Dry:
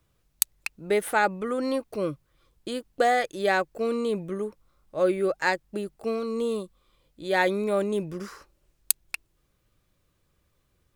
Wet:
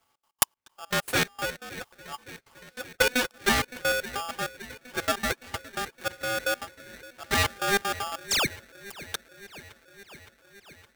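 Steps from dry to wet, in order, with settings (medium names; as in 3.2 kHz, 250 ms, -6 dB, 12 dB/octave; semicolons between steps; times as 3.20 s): comb filter that takes the minimum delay 6.3 ms; high-pass 82 Hz 12 dB/octave; 1.50–2.86 s: compressor with a negative ratio -42 dBFS, ratio -1; 8.28–8.54 s: painted sound fall 420–10000 Hz -26 dBFS; trance gate "xx.x.xx.." 195 bpm -24 dB; feedback echo behind a band-pass 565 ms, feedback 72%, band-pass 1 kHz, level -15.5 dB; polarity switched at an audio rate 1 kHz; trim +2 dB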